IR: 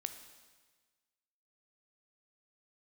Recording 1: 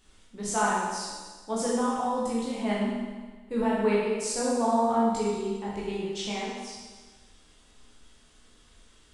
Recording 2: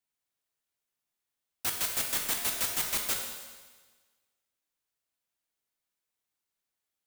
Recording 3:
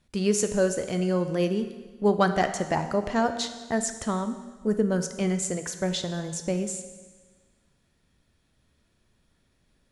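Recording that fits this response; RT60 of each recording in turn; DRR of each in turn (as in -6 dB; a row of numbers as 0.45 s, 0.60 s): 3; 1.4 s, 1.4 s, 1.4 s; -7.5 dB, 1.5 dB, 8.0 dB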